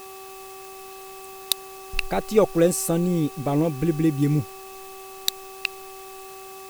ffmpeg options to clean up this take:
-af "adeclick=t=4,bandreject=f=384.1:t=h:w=4,bandreject=f=768.2:t=h:w=4,bandreject=f=1152.3:t=h:w=4,bandreject=f=2600:w=30,afftdn=nr=28:nf=-40"

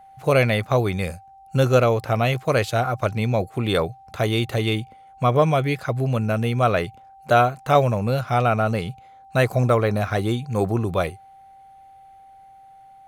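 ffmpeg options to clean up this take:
-af "bandreject=f=780:w=30"

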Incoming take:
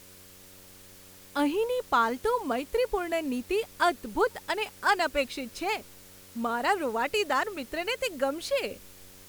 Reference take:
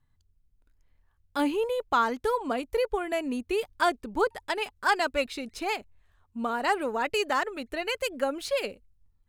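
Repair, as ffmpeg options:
-af "bandreject=f=93.6:t=h:w=4,bandreject=f=187.2:t=h:w=4,bandreject=f=280.8:t=h:w=4,bandreject=f=374.4:t=h:w=4,bandreject=f=468:t=h:w=4,bandreject=f=561.6:t=h:w=4,afwtdn=0.0025,asetnsamples=n=441:p=0,asendcmd='8.71 volume volume -5.5dB',volume=1"

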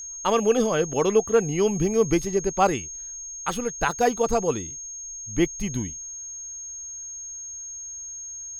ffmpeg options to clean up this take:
-af "bandreject=f=6500:w=30"

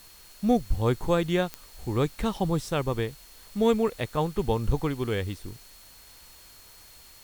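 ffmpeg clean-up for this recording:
-af "adeclick=t=4,bandreject=f=4300:w=30,afwtdn=0.0025"

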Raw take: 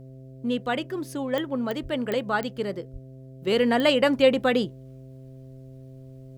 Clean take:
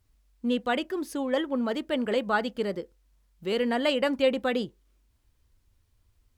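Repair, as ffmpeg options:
-filter_complex "[0:a]adeclick=t=4,bandreject=f=131.5:t=h:w=4,bandreject=f=263:t=h:w=4,bandreject=f=394.5:t=h:w=4,bandreject=f=526:t=h:w=4,bandreject=f=657.5:t=h:w=4,asplit=3[s0][s1][s2];[s0]afade=t=out:st=1.82:d=0.02[s3];[s1]highpass=f=140:w=0.5412,highpass=f=140:w=1.3066,afade=t=in:st=1.82:d=0.02,afade=t=out:st=1.94:d=0.02[s4];[s2]afade=t=in:st=1.94:d=0.02[s5];[s3][s4][s5]amix=inputs=3:normalize=0,asplit=3[s6][s7][s8];[s6]afade=t=out:st=2.92:d=0.02[s9];[s7]highpass=f=140:w=0.5412,highpass=f=140:w=1.3066,afade=t=in:st=2.92:d=0.02,afade=t=out:st=3.04:d=0.02[s10];[s8]afade=t=in:st=3.04:d=0.02[s11];[s9][s10][s11]amix=inputs=3:normalize=0,asetnsamples=n=441:p=0,asendcmd='3.47 volume volume -5dB',volume=1"

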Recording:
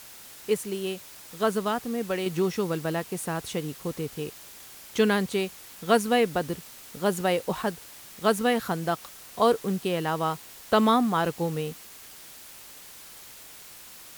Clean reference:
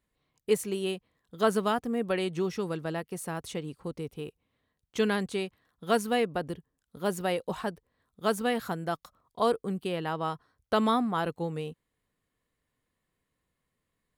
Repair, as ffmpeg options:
-af "afwtdn=0.005,asetnsamples=n=441:p=0,asendcmd='2.26 volume volume -4.5dB',volume=1"

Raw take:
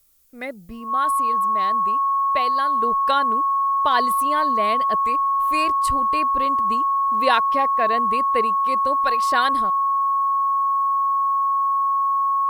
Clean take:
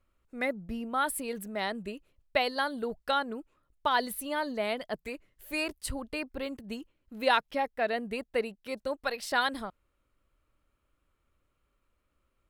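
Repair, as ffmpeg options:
-af "bandreject=f=1100:w=30,agate=range=0.0891:threshold=0.251,asetnsamples=n=441:p=0,asendcmd='2.82 volume volume -5.5dB',volume=1"

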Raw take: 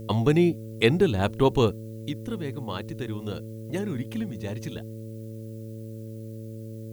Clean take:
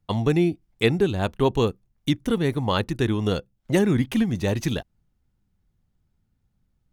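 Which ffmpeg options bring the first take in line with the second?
-af "bandreject=f=110.9:t=h:w=4,bandreject=f=221.8:t=h:w=4,bandreject=f=332.7:t=h:w=4,bandreject=f=443.6:t=h:w=4,bandreject=f=554.5:t=h:w=4,agate=range=0.0891:threshold=0.0316,asetnsamples=n=441:p=0,asendcmd='1.94 volume volume 10.5dB',volume=1"

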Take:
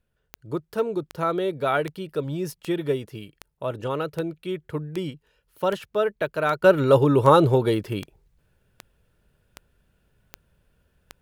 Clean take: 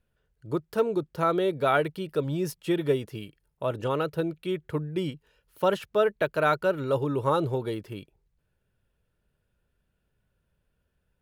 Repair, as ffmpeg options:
-af "adeclick=t=4,asetnsamples=n=441:p=0,asendcmd='6.64 volume volume -9.5dB',volume=1"

